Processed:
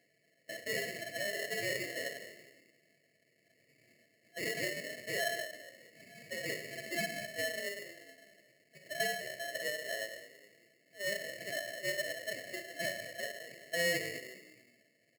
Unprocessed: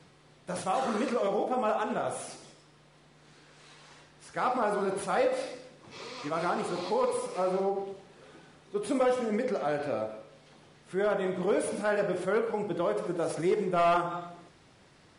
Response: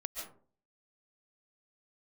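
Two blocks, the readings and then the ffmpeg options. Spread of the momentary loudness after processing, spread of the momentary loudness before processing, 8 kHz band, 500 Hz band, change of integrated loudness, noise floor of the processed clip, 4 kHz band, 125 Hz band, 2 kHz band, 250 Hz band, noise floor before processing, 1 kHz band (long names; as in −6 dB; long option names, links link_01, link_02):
15 LU, 13 LU, +1.5 dB, −12.0 dB, −7.5 dB, −73 dBFS, +4.5 dB, −11.5 dB, +3.0 dB, −15.5 dB, −59 dBFS, −18.0 dB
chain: -filter_complex "[0:a]asplit=5[link_01][link_02][link_03][link_04][link_05];[link_02]adelay=207,afreqshift=69,volume=-13.5dB[link_06];[link_03]adelay=414,afreqshift=138,volume=-21.9dB[link_07];[link_04]adelay=621,afreqshift=207,volume=-30.3dB[link_08];[link_05]adelay=828,afreqshift=276,volume=-38.7dB[link_09];[link_01][link_06][link_07][link_08][link_09]amix=inputs=5:normalize=0,afftfilt=real='re*between(b*sr/4096,500,1100)':imag='im*between(b*sr/4096,500,1100)':win_size=4096:overlap=0.75,aeval=exprs='val(0)*sgn(sin(2*PI*1200*n/s))':channel_layout=same,volume=-6.5dB"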